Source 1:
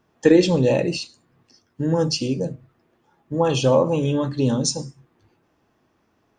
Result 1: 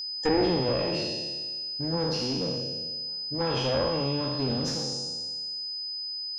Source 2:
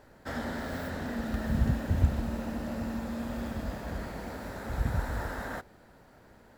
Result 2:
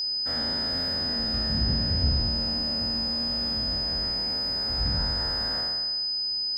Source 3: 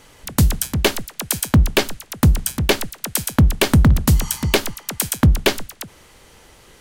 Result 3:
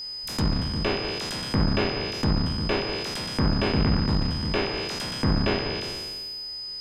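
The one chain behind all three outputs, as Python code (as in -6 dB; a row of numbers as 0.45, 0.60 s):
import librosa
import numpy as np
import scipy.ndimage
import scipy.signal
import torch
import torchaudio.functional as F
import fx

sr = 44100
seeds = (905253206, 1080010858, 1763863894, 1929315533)

y = fx.spec_trails(x, sr, decay_s=1.44)
y = fx.clip_asym(y, sr, top_db=-20.0, bottom_db=-2.5)
y = fx.env_lowpass_down(y, sr, base_hz=2300.0, full_db=-12.5)
y = y + 10.0 ** (-23.0 / 20.0) * np.sin(2.0 * np.pi * 5000.0 * np.arange(len(y)) / sr)
y = y * 10.0 ** (-12 / 20.0) / np.max(np.abs(y))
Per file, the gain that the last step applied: -9.0, -3.0, -9.5 dB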